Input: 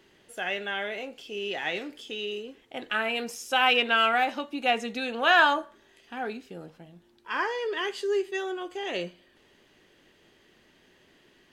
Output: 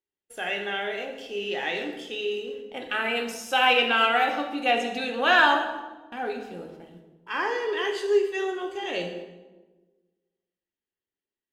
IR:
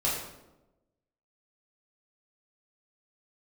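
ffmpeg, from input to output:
-filter_complex "[0:a]agate=range=-38dB:threshold=-51dB:ratio=16:detection=peak,asplit=2[link_01][link_02];[1:a]atrim=start_sample=2205,asetrate=32193,aresample=44100[link_03];[link_02][link_03]afir=irnorm=-1:irlink=0,volume=-11.5dB[link_04];[link_01][link_04]amix=inputs=2:normalize=0,volume=-2dB"

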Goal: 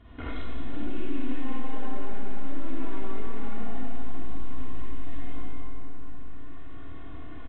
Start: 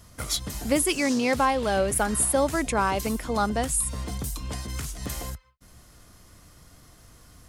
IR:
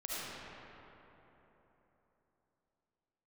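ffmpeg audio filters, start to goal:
-filter_complex "[0:a]aeval=exprs='(tanh(44.7*val(0)+0.65)-tanh(0.65))/44.7':channel_layout=same,equalizer=frequency=260:width_type=o:width=0.52:gain=11,aresample=8000,acrusher=bits=3:mode=log:mix=0:aa=0.000001,aresample=44100,aecho=1:1:179:0.501,asplit=2[link_01][link_02];[link_02]alimiter=level_in=2dB:limit=-24dB:level=0:latency=1,volume=-2dB,volume=-2dB[link_03];[link_01][link_03]amix=inputs=2:normalize=0,lowpass=frequency=2000:poles=1,aecho=1:1:2.8:0.58[link_04];[1:a]atrim=start_sample=2205,asetrate=61740,aresample=44100[link_05];[link_04][link_05]afir=irnorm=-1:irlink=0,acompressor=threshold=-34dB:ratio=2,bandreject=frequency=50.8:width_type=h:width=4,bandreject=frequency=101.6:width_type=h:width=4,bandreject=frequency=152.4:width_type=h:width=4,bandreject=frequency=203.2:width_type=h:width=4,bandreject=frequency=254:width_type=h:width=4,bandreject=frequency=304.8:width_type=h:width=4,bandreject=frequency=355.6:width_type=h:width=4,bandreject=frequency=406.4:width_type=h:width=4,bandreject=frequency=457.2:width_type=h:width=4,bandreject=frequency=508:width_type=h:width=4,bandreject=frequency=558.8:width_type=h:width=4,bandreject=frequency=609.6:width_type=h:width=4,bandreject=frequency=660.4:width_type=h:width=4,bandreject=frequency=711.2:width_type=h:width=4,bandreject=frequency=762:width_type=h:width=4,bandreject=frequency=812.8:width_type=h:width=4,bandreject=frequency=863.6:width_type=h:width=4,bandreject=frequency=914.4:width_type=h:width=4,bandreject=frequency=965.2:width_type=h:width=4,bandreject=frequency=1016:width_type=h:width=4,bandreject=frequency=1066.8:width_type=h:width=4,bandreject=frequency=1117.6:width_type=h:width=4,bandreject=frequency=1168.4:width_type=h:width=4,bandreject=frequency=1219.2:width_type=h:width=4,bandreject=frequency=1270:width_type=h:width=4,bandreject=frequency=1320.8:width_type=h:width=4,bandreject=frequency=1371.6:width_type=h:width=4,bandreject=frequency=1422.4:width_type=h:width=4,volume=4dB"

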